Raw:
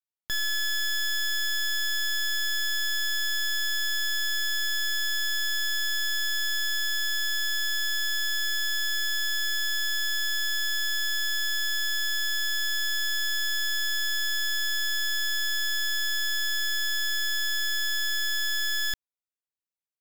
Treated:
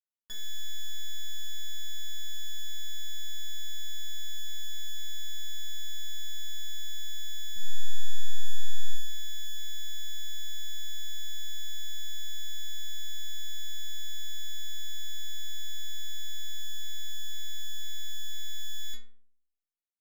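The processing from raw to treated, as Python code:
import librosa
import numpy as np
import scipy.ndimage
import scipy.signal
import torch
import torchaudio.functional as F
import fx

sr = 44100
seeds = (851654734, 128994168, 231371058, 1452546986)

y = fx.low_shelf(x, sr, hz=490.0, db=12.0, at=(7.56, 8.94))
y = fx.stiff_resonator(y, sr, f0_hz=220.0, decay_s=0.61, stiffness=0.008)
y = F.gain(torch.from_numpy(y), 6.5).numpy()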